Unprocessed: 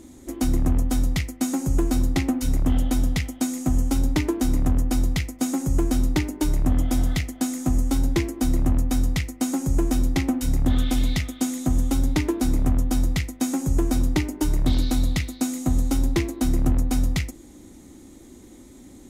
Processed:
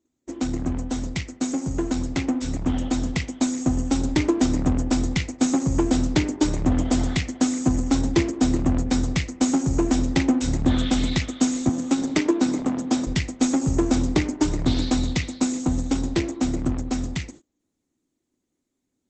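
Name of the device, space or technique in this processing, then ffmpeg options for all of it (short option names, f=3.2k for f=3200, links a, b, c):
video call: -filter_complex "[0:a]asettb=1/sr,asplit=3[a][b][c];[a]atrim=end=11.694[d];[b]atrim=start=11.69:end=13.07,asetpts=PTS-STARTPTS,afade=t=in:d=0.004:c=qsin,afade=t=out:st=1.376:d=0.004:c=qsin,highpass=f=180:w=0.5412,highpass=f=180:w=1.3066[e];[c]atrim=start=13.066[f];[d][e]acrossfade=d=0.004:c1=hsin:c2=qsin[g];[g][f]acrossfade=d=0.004:c1=qsin:c2=hsin,highpass=f=130:p=1,dynaudnorm=f=210:g=31:m=5.5dB,agate=range=-30dB:threshold=-41dB:ratio=16:detection=peak" -ar 48000 -c:a libopus -b:a 12k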